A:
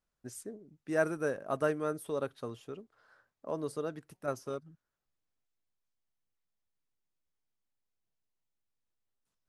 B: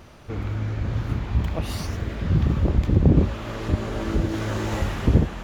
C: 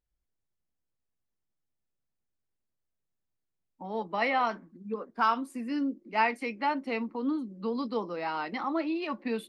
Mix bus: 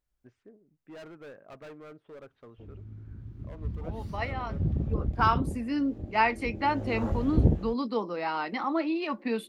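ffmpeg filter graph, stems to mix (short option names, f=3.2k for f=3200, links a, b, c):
-filter_complex "[0:a]lowpass=f=2.6k:w=0.5412,lowpass=f=2.6k:w=1.3066,aemphasis=mode=production:type=50kf,volume=33dB,asoftclip=hard,volume=-33dB,volume=-9.5dB,asplit=2[a][b];[1:a]afwtdn=0.0447,adelay=2300,volume=4dB,afade=t=in:st=3.32:d=0.76:silence=0.334965,afade=t=out:st=4.91:d=0.56:silence=0.398107,afade=t=in:st=6.52:d=0.67:silence=0.251189[c];[2:a]volume=2dB[d];[b]apad=whole_len=418361[e];[d][e]sidechaincompress=threshold=-57dB:ratio=10:attack=16:release=739[f];[a][c][f]amix=inputs=3:normalize=0"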